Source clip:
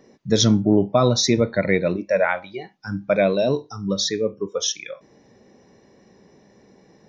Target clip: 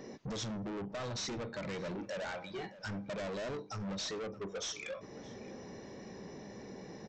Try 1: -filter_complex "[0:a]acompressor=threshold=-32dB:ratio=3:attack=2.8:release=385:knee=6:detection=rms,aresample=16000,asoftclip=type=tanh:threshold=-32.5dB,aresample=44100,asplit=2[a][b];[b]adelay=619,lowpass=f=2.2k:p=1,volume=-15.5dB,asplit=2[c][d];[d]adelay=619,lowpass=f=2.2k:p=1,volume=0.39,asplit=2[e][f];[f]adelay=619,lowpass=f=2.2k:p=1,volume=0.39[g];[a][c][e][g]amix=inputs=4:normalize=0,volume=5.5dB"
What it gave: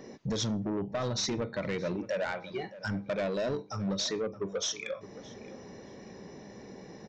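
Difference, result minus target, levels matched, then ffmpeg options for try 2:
soft clip: distortion -7 dB
-filter_complex "[0:a]acompressor=threshold=-32dB:ratio=3:attack=2.8:release=385:knee=6:detection=rms,aresample=16000,asoftclip=type=tanh:threshold=-43dB,aresample=44100,asplit=2[a][b];[b]adelay=619,lowpass=f=2.2k:p=1,volume=-15.5dB,asplit=2[c][d];[d]adelay=619,lowpass=f=2.2k:p=1,volume=0.39,asplit=2[e][f];[f]adelay=619,lowpass=f=2.2k:p=1,volume=0.39[g];[a][c][e][g]amix=inputs=4:normalize=0,volume=5.5dB"

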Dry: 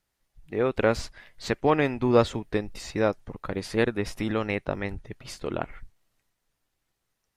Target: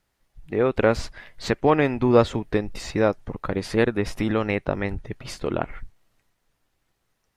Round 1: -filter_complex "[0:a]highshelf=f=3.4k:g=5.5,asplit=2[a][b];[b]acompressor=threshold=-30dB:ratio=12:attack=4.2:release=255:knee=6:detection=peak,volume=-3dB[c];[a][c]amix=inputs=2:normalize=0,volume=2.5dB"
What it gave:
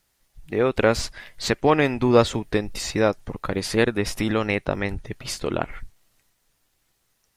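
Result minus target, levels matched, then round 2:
8000 Hz band +8.5 dB
-filter_complex "[0:a]highshelf=f=3.4k:g=-5.5,asplit=2[a][b];[b]acompressor=threshold=-30dB:ratio=12:attack=4.2:release=255:knee=6:detection=peak,volume=-3dB[c];[a][c]amix=inputs=2:normalize=0,volume=2.5dB"

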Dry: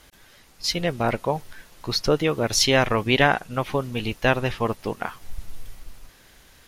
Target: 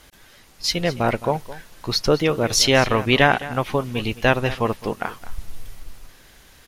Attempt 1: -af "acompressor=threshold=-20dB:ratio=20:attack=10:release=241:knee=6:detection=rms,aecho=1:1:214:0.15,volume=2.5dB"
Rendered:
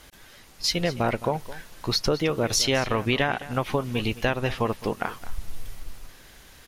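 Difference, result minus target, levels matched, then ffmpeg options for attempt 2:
compressor: peak gain reduction +10.5 dB
-af "aecho=1:1:214:0.15,volume=2.5dB"

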